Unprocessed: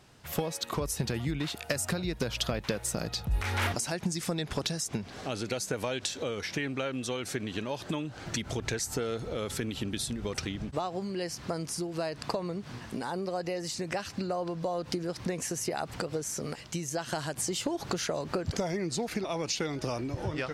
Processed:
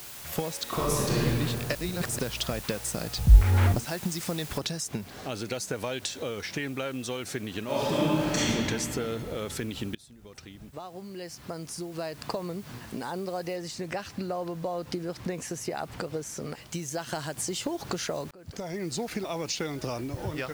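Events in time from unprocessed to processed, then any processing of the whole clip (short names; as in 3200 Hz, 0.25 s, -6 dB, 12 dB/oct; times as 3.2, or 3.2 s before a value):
0.63–1.24 reverb throw, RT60 2.4 s, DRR -6 dB
1.75–2.19 reverse
3.18–3.86 tilt -3.5 dB/oct
4.58 noise floor step -43 dB -55 dB
7.64–8.47 reverb throw, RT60 2.7 s, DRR -9.5 dB
9.95–12.48 fade in, from -23 dB
13.56–16.72 high shelf 4700 Hz -5.5 dB
18.31–18.89 fade in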